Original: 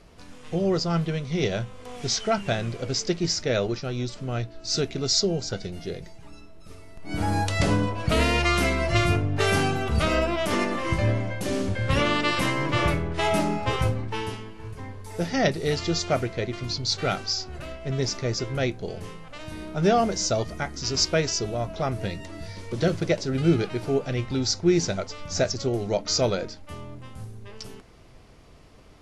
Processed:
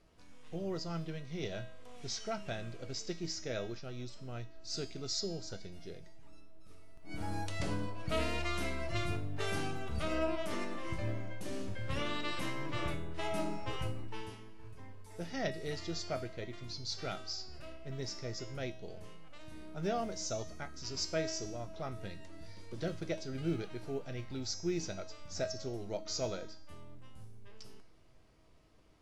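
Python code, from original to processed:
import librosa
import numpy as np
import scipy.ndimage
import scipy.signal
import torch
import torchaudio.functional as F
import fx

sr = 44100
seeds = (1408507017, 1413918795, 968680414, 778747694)

y = fx.quant_float(x, sr, bits=6)
y = fx.comb_fb(y, sr, f0_hz=320.0, decay_s=0.69, harmonics='all', damping=0.0, mix_pct=80)
y = F.gain(torch.from_numpy(y), -1.5).numpy()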